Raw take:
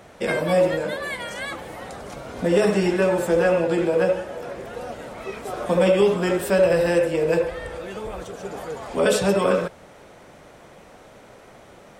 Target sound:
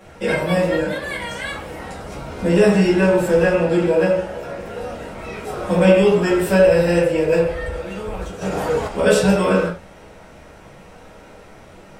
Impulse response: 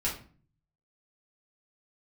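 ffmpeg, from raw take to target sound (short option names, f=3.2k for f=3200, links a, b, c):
-filter_complex "[1:a]atrim=start_sample=2205,afade=t=out:st=0.17:d=0.01,atrim=end_sample=7938[a];[0:a][a]afir=irnorm=-1:irlink=0,asplit=3[b][c][d];[b]afade=t=out:st=8.41:d=0.02[e];[c]acontrast=88,afade=t=in:st=8.41:d=0.02,afade=t=out:st=8.87:d=0.02[f];[d]afade=t=in:st=8.87:d=0.02[g];[e][f][g]amix=inputs=3:normalize=0,volume=-2.5dB"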